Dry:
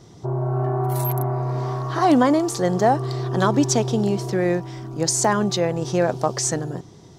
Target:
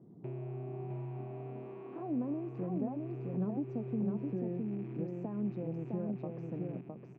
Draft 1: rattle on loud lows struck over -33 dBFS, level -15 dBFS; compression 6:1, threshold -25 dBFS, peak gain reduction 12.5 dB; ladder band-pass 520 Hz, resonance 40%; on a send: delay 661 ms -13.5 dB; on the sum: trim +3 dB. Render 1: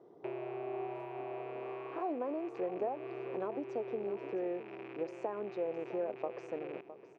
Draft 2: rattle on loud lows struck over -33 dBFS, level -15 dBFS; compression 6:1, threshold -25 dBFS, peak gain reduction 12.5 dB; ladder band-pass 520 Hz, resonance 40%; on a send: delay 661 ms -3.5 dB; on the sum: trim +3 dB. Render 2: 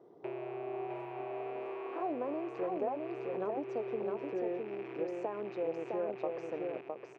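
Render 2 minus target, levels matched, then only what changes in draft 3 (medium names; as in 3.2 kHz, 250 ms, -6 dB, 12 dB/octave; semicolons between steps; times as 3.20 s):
500 Hz band +6.5 dB
change: ladder band-pass 240 Hz, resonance 40%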